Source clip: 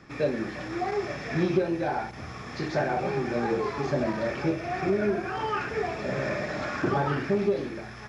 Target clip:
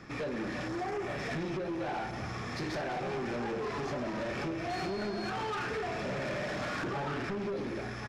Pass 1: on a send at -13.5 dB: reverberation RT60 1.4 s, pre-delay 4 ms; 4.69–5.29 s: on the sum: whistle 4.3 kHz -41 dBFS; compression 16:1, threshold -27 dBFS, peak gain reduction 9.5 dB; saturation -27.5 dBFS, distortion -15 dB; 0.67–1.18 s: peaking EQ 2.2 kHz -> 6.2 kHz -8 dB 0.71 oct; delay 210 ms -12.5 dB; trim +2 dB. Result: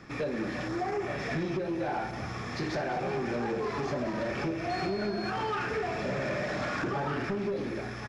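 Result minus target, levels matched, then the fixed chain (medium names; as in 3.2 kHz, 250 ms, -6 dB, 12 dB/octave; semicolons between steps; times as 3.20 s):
saturation: distortion -6 dB
on a send at -13.5 dB: reverberation RT60 1.4 s, pre-delay 4 ms; 4.69–5.29 s: on the sum: whistle 4.3 kHz -41 dBFS; compression 16:1, threshold -27 dBFS, peak gain reduction 9.5 dB; saturation -34 dBFS, distortion -9 dB; 0.67–1.18 s: peaking EQ 2.2 kHz -> 6.2 kHz -8 dB 0.71 oct; delay 210 ms -12.5 dB; trim +2 dB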